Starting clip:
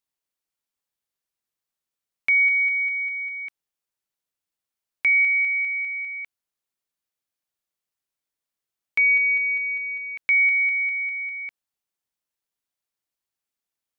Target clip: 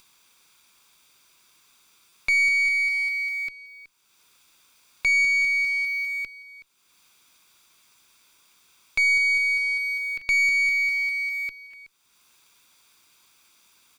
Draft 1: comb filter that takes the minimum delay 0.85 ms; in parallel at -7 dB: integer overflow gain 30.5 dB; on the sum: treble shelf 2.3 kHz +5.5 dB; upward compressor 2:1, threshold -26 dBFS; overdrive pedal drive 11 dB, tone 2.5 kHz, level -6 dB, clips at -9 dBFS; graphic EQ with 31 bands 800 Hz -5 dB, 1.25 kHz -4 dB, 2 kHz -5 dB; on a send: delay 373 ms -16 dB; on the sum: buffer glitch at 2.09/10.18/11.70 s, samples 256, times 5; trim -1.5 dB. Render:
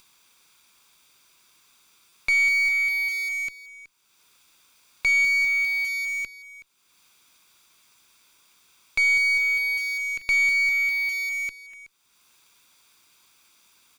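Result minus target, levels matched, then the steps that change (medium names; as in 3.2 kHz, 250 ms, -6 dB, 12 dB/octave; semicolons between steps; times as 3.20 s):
integer overflow: distortion -4 dB
change: integer overflow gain 41 dB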